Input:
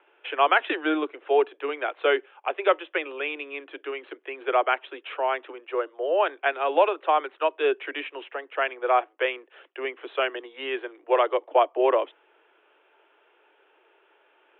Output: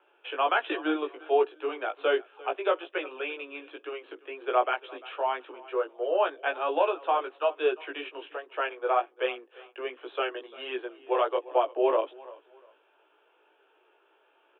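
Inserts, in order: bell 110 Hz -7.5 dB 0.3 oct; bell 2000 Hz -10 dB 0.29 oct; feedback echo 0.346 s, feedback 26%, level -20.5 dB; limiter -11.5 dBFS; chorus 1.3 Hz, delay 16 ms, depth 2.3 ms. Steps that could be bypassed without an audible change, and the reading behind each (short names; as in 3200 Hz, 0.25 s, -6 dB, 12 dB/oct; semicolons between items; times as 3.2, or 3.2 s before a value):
bell 110 Hz: input band starts at 250 Hz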